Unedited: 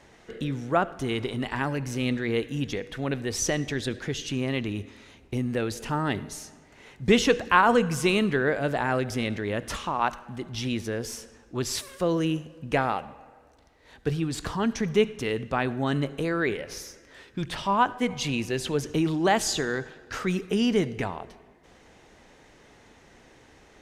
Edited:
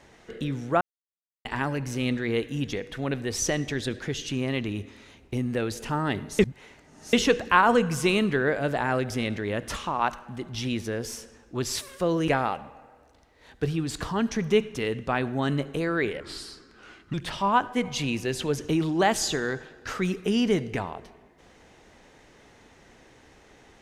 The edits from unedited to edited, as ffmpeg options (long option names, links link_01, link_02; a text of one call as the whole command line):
ffmpeg -i in.wav -filter_complex "[0:a]asplit=8[link_01][link_02][link_03][link_04][link_05][link_06][link_07][link_08];[link_01]atrim=end=0.81,asetpts=PTS-STARTPTS,afade=type=out:start_time=0.806:duration=0.004:curve=hsin[link_09];[link_02]atrim=start=0.81:end=1.45,asetpts=PTS-STARTPTS,volume=0[link_10];[link_03]atrim=start=1.45:end=6.392,asetpts=PTS-STARTPTS,afade=type=in:duration=0.004:curve=hsin[link_11];[link_04]atrim=start=6.388:end=7.132,asetpts=PTS-STARTPTS,areverse[link_12];[link_05]atrim=start=7.128:end=12.282[link_13];[link_06]atrim=start=12.718:end=16.644[link_14];[link_07]atrim=start=16.64:end=17.39,asetpts=PTS-STARTPTS,asetrate=35280,aresample=44100[link_15];[link_08]atrim=start=17.386[link_16];[link_09][link_10][link_11]concat=n=3:v=0:a=1[link_17];[link_17][link_12]acrossfade=duration=0.004:curve1=hsin:curve2=hsin[link_18];[link_18][link_13]acrossfade=duration=0.004:curve1=hsin:curve2=hsin[link_19];[link_19][link_14]acrossfade=duration=0.004:curve1=hsin:curve2=hsin[link_20];[link_20][link_15]acrossfade=duration=0.004:curve1=hsin:curve2=hsin[link_21];[link_21][link_16]acrossfade=duration=0.004:curve1=hsin:curve2=hsin" out.wav